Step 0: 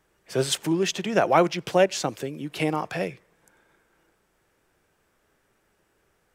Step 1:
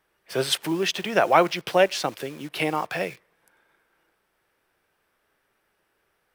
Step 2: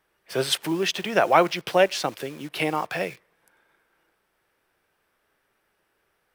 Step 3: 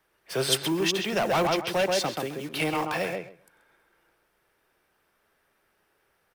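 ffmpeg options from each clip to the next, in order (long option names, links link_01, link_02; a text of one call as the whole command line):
ffmpeg -i in.wav -filter_complex "[0:a]equalizer=frequency=7100:width_type=o:width=0.52:gain=-10.5,asplit=2[link_01][link_02];[link_02]acrusher=bits=6:mix=0:aa=0.000001,volume=-4dB[link_03];[link_01][link_03]amix=inputs=2:normalize=0,lowshelf=frequency=430:gain=-10" out.wav
ffmpeg -i in.wav -af anull out.wav
ffmpeg -i in.wav -filter_complex "[0:a]asplit=2[link_01][link_02];[link_02]adelay=132,lowpass=frequency=1900:poles=1,volume=-4dB,asplit=2[link_03][link_04];[link_04]adelay=132,lowpass=frequency=1900:poles=1,volume=0.16,asplit=2[link_05][link_06];[link_06]adelay=132,lowpass=frequency=1900:poles=1,volume=0.16[link_07];[link_01][link_03][link_05][link_07]amix=inputs=4:normalize=0,acrossover=split=210|3800[link_08][link_09][link_10];[link_09]asoftclip=type=tanh:threshold=-21.5dB[link_11];[link_10]aecho=1:1:2.2:0.74[link_12];[link_08][link_11][link_12]amix=inputs=3:normalize=0" out.wav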